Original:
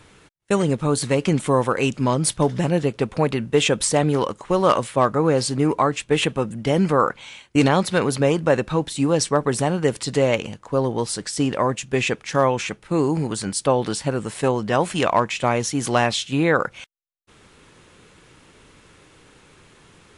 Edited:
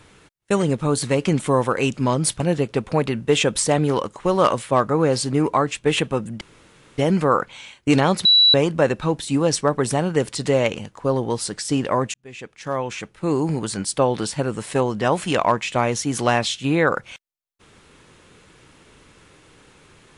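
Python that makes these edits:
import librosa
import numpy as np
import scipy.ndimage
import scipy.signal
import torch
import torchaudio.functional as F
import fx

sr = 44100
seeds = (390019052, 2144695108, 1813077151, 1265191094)

y = fx.edit(x, sr, fx.cut(start_s=2.4, length_s=0.25),
    fx.insert_room_tone(at_s=6.66, length_s=0.57),
    fx.bleep(start_s=7.93, length_s=0.29, hz=3930.0, db=-10.0),
    fx.fade_in_span(start_s=11.82, length_s=1.35), tone=tone)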